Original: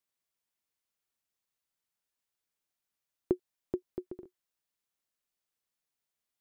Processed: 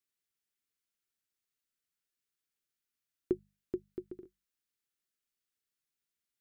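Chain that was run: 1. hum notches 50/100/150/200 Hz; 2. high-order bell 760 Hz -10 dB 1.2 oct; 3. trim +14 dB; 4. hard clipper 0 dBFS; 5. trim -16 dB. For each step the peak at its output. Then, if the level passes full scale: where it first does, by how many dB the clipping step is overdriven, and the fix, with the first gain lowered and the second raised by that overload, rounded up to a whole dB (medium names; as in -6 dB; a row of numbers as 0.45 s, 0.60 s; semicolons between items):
-15.5 dBFS, -16.5 dBFS, -2.5 dBFS, -2.5 dBFS, -18.5 dBFS; nothing clips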